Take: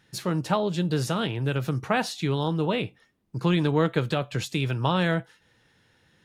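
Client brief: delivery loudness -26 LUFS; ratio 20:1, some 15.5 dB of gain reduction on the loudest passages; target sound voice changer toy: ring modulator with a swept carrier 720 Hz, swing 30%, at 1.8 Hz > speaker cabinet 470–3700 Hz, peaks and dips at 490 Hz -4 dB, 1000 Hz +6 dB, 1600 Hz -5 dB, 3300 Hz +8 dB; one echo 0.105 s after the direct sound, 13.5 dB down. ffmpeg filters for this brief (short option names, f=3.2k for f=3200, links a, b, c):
-af "acompressor=threshold=-33dB:ratio=20,aecho=1:1:105:0.211,aeval=exprs='val(0)*sin(2*PI*720*n/s+720*0.3/1.8*sin(2*PI*1.8*n/s))':c=same,highpass=470,equalizer=f=490:t=q:w=4:g=-4,equalizer=f=1k:t=q:w=4:g=6,equalizer=f=1.6k:t=q:w=4:g=-5,equalizer=f=3.3k:t=q:w=4:g=8,lowpass=f=3.7k:w=0.5412,lowpass=f=3.7k:w=1.3066,volume=14.5dB"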